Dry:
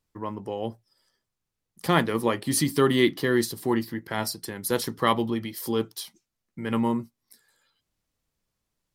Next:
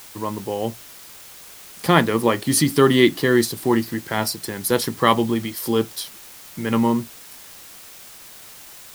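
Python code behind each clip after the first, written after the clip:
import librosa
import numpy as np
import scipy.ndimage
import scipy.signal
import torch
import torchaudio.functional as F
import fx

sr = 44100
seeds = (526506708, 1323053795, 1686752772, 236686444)

y = fx.quant_dither(x, sr, seeds[0], bits=8, dither='triangular')
y = y * 10.0 ** (6.0 / 20.0)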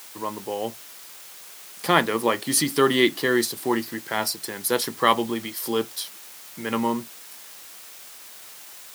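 y = fx.highpass(x, sr, hz=430.0, slope=6)
y = y * 10.0 ** (-1.0 / 20.0)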